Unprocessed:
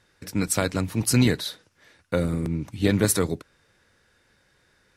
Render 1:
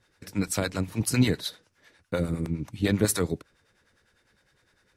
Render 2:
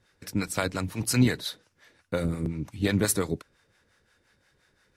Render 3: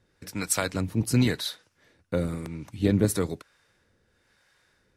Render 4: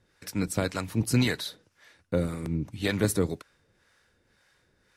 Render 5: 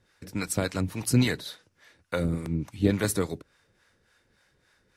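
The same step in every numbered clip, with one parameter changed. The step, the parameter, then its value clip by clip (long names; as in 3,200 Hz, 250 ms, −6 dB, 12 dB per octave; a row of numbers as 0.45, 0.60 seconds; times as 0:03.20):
two-band tremolo in antiphase, speed: 9.9, 5.7, 1, 1.9, 3.5 Hertz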